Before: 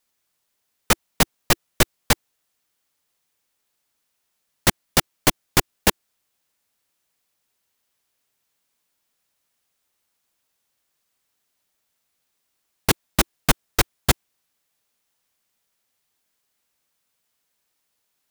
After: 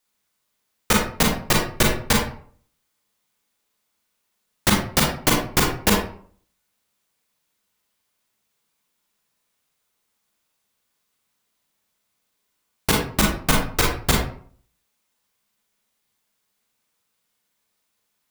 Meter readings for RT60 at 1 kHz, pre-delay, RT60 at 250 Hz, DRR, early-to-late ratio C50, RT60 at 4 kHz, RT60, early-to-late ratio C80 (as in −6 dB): 0.50 s, 29 ms, 0.55 s, −1.5 dB, 3.5 dB, 0.30 s, 0.55 s, 8.0 dB